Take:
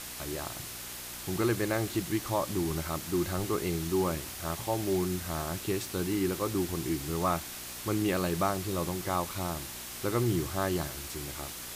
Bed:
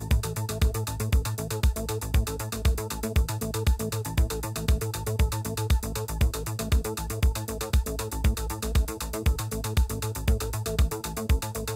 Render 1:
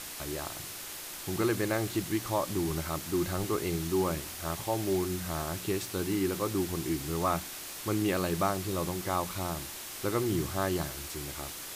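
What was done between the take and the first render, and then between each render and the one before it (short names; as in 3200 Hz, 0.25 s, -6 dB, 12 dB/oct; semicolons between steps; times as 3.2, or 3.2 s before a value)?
de-hum 60 Hz, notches 4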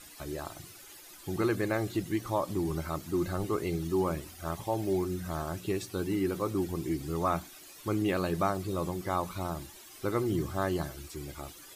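denoiser 14 dB, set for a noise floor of -42 dBFS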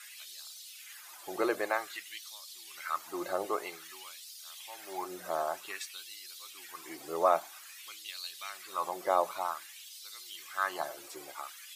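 LFO high-pass sine 0.52 Hz 550–4300 Hz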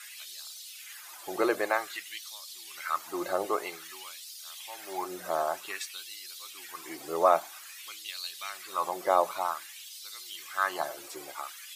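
gain +3.5 dB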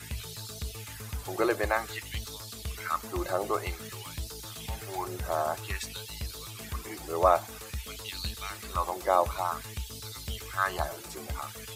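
add bed -14 dB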